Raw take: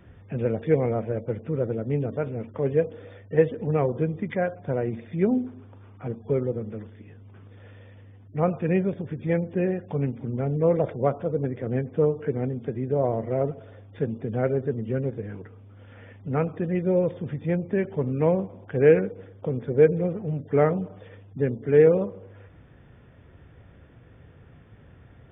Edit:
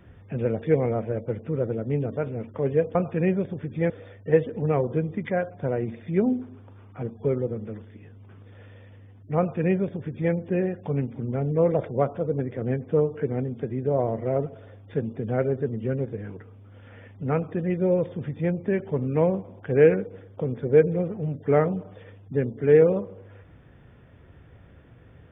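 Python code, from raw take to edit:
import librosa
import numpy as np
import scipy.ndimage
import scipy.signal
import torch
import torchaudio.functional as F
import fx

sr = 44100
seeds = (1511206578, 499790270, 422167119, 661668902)

y = fx.edit(x, sr, fx.duplicate(start_s=8.43, length_s=0.95, to_s=2.95), tone=tone)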